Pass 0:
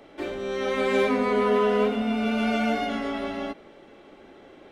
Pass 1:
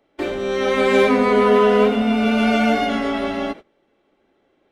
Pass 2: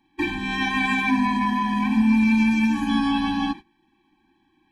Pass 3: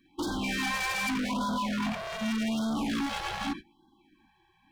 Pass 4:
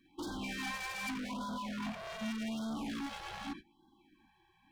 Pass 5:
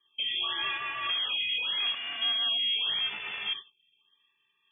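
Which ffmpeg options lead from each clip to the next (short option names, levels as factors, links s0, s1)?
-af "agate=range=0.0794:threshold=0.01:ratio=16:detection=peak,volume=2.37"
-af "equalizer=f=2300:w=3:g=5,alimiter=level_in=3.35:limit=0.891:release=50:level=0:latency=1,afftfilt=real='re*eq(mod(floor(b*sr/1024/380),2),0)':imag='im*eq(mod(floor(b*sr/1024/380),2),0)':win_size=1024:overlap=0.75,volume=0.398"
-af "volume=31.6,asoftclip=hard,volume=0.0316,afftfilt=real='re*(1-between(b*sr/1024,230*pow(2300/230,0.5+0.5*sin(2*PI*0.84*pts/sr))/1.41,230*pow(2300/230,0.5+0.5*sin(2*PI*0.84*pts/sr))*1.41))':imag='im*(1-between(b*sr/1024,230*pow(2300/230,0.5+0.5*sin(2*PI*0.84*pts/sr))/1.41,230*pow(2300/230,0.5+0.5*sin(2*PI*0.84*pts/sr))*1.41))':win_size=1024:overlap=0.75,volume=1.19"
-af "alimiter=level_in=2.37:limit=0.0631:level=0:latency=1:release=351,volume=0.422,volume=0.708"
-af "lowpass=f=3000:t=q:w=0.5098,lowpass=f=3000:t=q:w=0.6013,lowpass=f=3000:t=q:w=0.9,lowpass=f=3000:t=q:w=2.563,afreqshift=-3500,aemphasis=mode=production:type=75kf,agate=range=0.251:threshold=0.00251:ratio=16:detection=peak,volume=1.68"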